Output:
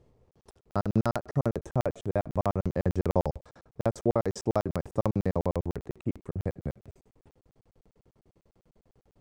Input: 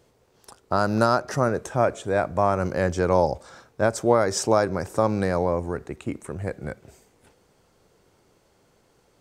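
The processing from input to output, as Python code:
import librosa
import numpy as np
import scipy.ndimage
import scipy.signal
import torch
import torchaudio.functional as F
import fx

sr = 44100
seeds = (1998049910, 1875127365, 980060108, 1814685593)

y = fx.transient(x, sr, attack_db=4, sustain_db=-4, at=(0.77, 1.26))
y = fx.tilt_eq(y, sr, slope=-3.0)
y = fx.notch(y, sr, hz=1500.0, q=8.4)
y = fx.buffer_crackle(y, sr, first_s=0.31, period_s=0.1, block=2048, kind='zero')
y = F.gain(torch.from_numpy(y), -7.5).numpy()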